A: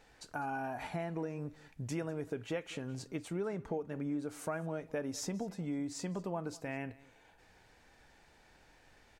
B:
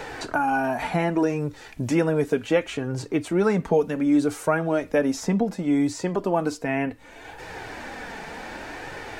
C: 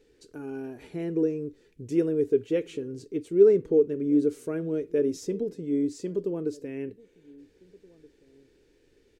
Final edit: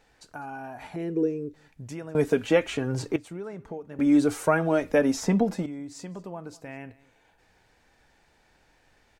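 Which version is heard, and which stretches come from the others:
A
0.96–1.54 from C
2.15–3.16 from B
3.99–5.66 from B

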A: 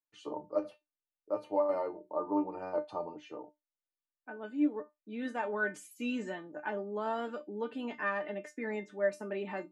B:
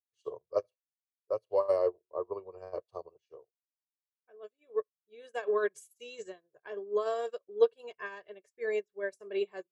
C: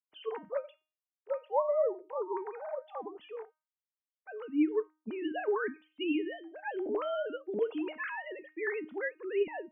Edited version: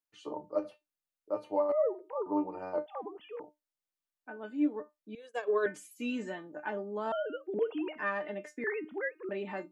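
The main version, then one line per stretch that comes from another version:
A
1.72–2.26 from C
2.86–3.4 from C
5.15–5.66 from B
7.12–7.98 from C
8.64–9.29 from C

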